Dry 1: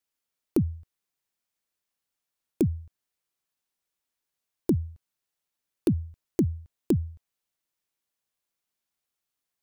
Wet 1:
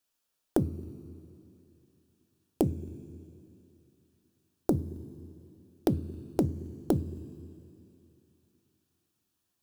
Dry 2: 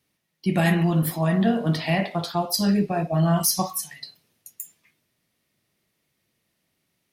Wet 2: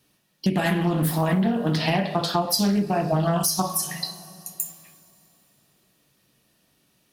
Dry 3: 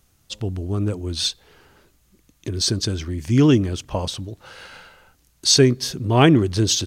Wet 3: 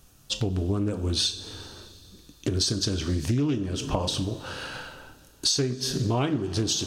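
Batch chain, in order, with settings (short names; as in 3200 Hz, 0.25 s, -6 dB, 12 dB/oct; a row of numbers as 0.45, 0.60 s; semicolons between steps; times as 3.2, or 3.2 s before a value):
notch 2100 Hz, Q 5.4; two-slope reverb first 0.34 s, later 2.9 s, from -20 dB, DRR 7 dB; compressor 20:1, threshold -26 dBFS; Doppler distortion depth 0.27 ms; normalise peaks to -9 dBFS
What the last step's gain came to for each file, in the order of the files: +4.0, +8.0, +4.5 dB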